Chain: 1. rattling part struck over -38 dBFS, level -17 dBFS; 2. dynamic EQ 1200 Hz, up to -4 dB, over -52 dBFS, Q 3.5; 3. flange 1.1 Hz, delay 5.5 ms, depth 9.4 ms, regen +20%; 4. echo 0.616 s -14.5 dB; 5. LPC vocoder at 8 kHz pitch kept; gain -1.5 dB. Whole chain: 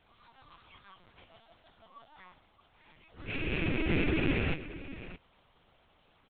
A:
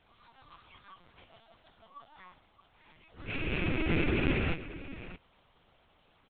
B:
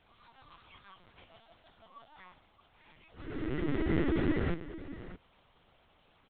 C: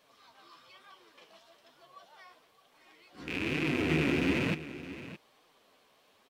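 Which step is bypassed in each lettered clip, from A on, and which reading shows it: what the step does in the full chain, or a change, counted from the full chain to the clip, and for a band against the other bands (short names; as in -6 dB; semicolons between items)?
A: 2, 1 kHz band +1.5 dB; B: 1, 4 kHz band -8.0 dB; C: 5, 125 Hz band -2.5 dB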